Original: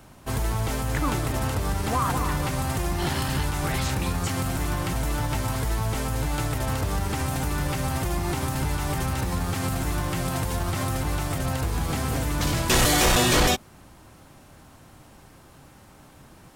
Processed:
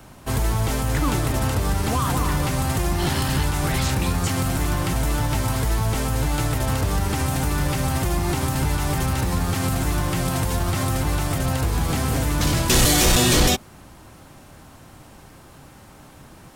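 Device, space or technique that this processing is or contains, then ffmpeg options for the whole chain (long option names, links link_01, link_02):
one-band saturation: -filter_complex "[0:a]acrossover=split=400|3000[link_01][link_02][link_03];[link_02]asoftclip=type=tanh:threshold=-28dB[link_04];[link_01][link_04][link_03]amix=inputs=3:normalize=0,volume=4.5dB"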